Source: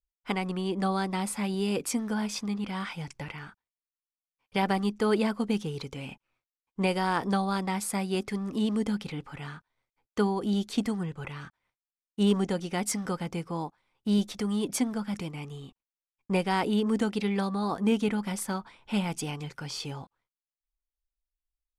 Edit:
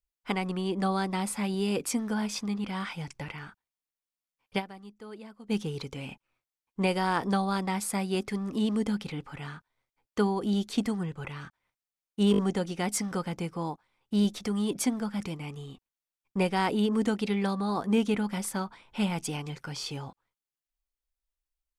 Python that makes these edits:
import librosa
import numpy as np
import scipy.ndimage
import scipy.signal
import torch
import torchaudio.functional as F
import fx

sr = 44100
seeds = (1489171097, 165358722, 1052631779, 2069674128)

y = fx.edit(x, sr, fx.fade_down_up(start_s=4.58, length_s=0.94, db=-19.0, fade_s=0.23, curve='exp'),
    fx.stutter(start_s=12.32, slice_s=0.02, count=4), tone=tone)